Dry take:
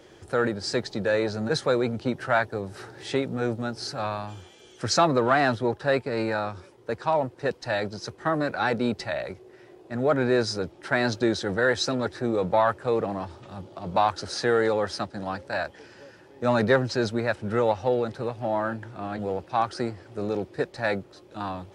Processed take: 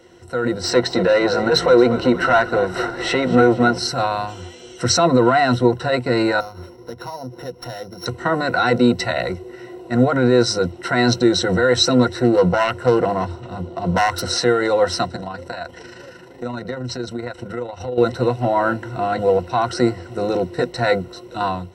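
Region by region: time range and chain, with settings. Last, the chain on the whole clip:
0.64–3.79 s: overdrive pedal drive 16 dB, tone 1.6 kHz, clips at -10 dBFS + frequency-shifting echo 232 ms, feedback 56%, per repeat -44 Hz, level -16.5 dB
6.40–8.06 s: sorted samples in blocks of 8 samples + low-pass 2.2 kHz 6 dB/octave + compression 4:1, threshold -42 dBFS
12.23–14.22 s: self-modulated delay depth 0.24 ms + tape noise reduction on one side only decoder only
15.16–17.98 s: AM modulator 26 Hz, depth 35% + compression 10:1, threshold -36 dBFS
whole clip: peak limiter -18.5 dBFS; rippled EQ curve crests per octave 2, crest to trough 14 dB; level rider gain up to 10 dB

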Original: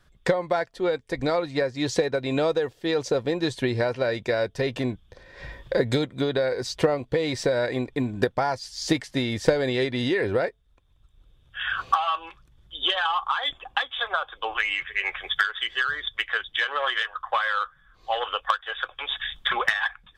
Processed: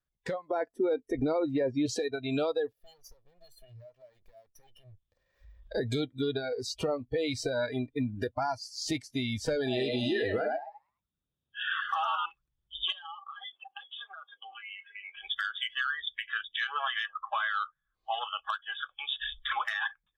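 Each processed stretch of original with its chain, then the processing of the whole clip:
0.49–1.86 s: peaking EQ 320 Hz +11 dB 2.4 oct + band-stop 4.2 kHz, Q 6.5
2.72–5.62 s: comb filter that takes the minimum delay 1.7 ms + compression 3:1, threshold -43 dBFS
9.56–12.26 s: high-pass 85 Hz + band-stop 2.1 kHz, Q 9.6 + frequency-shifting echo 104 ms, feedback 39%, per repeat +100 Hz, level -3.5 dB
12.92–15.17 s: compression, threshold -34 dBFS + band-pass 330–4700 Hz
whole clip: spectral noise reduction 22 dB; peak limiter -17.5 dBFS; level rider gain up to 3 dB; trim -7 dB

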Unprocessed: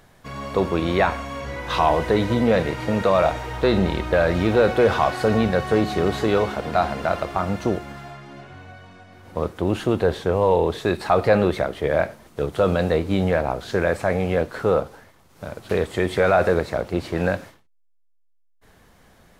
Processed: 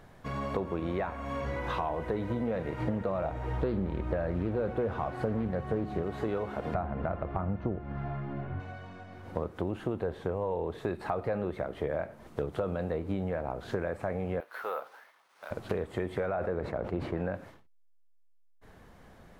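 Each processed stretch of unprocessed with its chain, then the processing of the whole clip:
2.80–6.03 s: bass shelf 410 Hz +7.5 dB + loudspeaker Doppler distortion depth 0.27 ms
6.74–8.60 s: low-pass 2.2 kHz + bass shelf 190 Hz +11 dB
14.40–15.51 s: high-pass 1.1 kHz + careless resampling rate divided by 3×, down filtered, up hold
16.26–17.35 s: low-pass 2.7 kHz 6 dB/octave + decay stretcher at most 93 dB/s
whole clip: dynamic bell 4.9 kHz, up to -6 dB, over -43 dBFS, Q 0.92; compression 6:1, threshold -29 dBFS; treble shelf 2.6 kHz -10 dB

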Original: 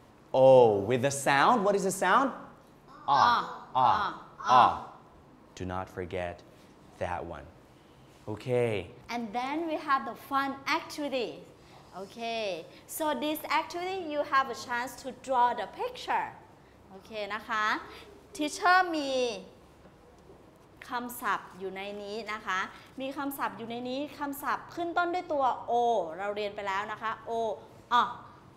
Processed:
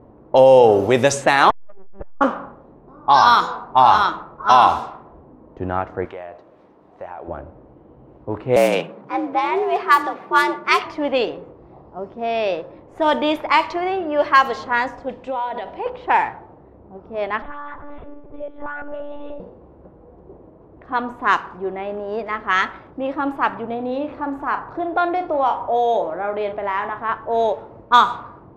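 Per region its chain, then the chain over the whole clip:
1.50–2.21 s: LPC vocoder at 8 kHz pitch kept + transformer saturation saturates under 460 Hz
6.05–7.28 s: tilt EQ +4 dB/octave + compression 3:1, threshold -40 dBFS
8.56–10.84 s: block-companded coder 5-bit + frequency shift +75 Hz
15.09–15.86 s: resonant high shelf 2 kHz +9 dB, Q 1.5 + hum notches 60/120/180/240/300/360/420/480/540/600 Hz + compression, threshold -33 dBFS
17.42–19.40 s: comb 4.9 ms, depth 100% + compression 5:1, threshold -39 dBFS + monotone LPC vocoder at 8 kHz 290 Hz
23.75–27.09 s: doubling 40 ms -10 dB + compression 1.5:1, threshold -35 dBFS
whole clip: level-controlled noise filter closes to 530 Hz, open at -22 dBFS; peaking EQ 140 Hz -5.5 dB 1.8 oct; loudness maximiser +14.5 dB; trim -1 dB

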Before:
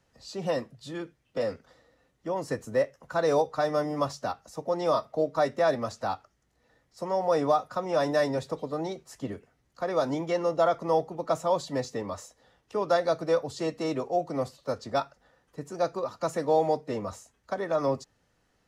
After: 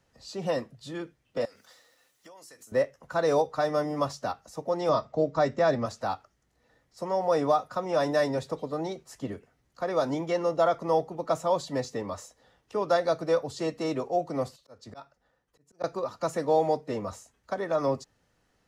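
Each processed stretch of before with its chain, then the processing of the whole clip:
1.45–2.72 s: tilt EQ +4.5 dB/octave + hum notches 50/100/150/200/250/300/350 Hz + compression 12:1, threshold -47 dBFS
4.89–5.86 s: Chebyshev low-pass 8.1 kHz, order 8 + bass shelf 220 Hz +9.5 dB
14.56–15.84 s: slow attack 457 ms + three bands expanded up and down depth 70%
whole clip: none

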